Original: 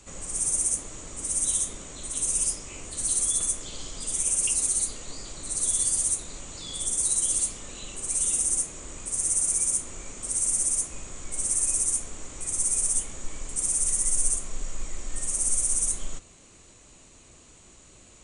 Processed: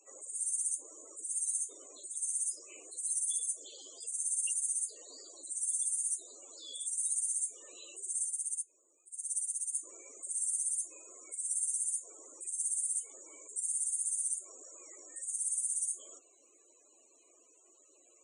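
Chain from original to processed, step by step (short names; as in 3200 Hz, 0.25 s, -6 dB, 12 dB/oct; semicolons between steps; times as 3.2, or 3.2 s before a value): HPF 330 Hz 24 dB/oct; loudest bins only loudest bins 64; 8.26–9.75 upward expander 2.5:1, over -36 dBFS; gain -7.5 dB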